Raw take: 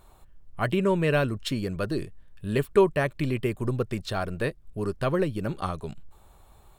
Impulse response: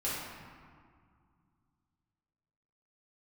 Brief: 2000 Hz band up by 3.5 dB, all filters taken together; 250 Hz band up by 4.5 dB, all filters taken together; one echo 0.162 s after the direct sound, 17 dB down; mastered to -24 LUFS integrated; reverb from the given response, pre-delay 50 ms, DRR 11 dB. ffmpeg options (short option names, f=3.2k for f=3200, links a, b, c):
-filter_complex "[0:a]equalizer=f=250:t=o:g=6.5,equalizer=f=2k:t=o:g=4.5,aecho=1:1:162:0.141,asplit=2[a][b];[1:a]atrim=start_sample=2205,adelay=50[c];[b][c]afir=irnorm=-1:irlink=0,volume=-17dB[d];[a][d]amix=inputs=2:normalize=0"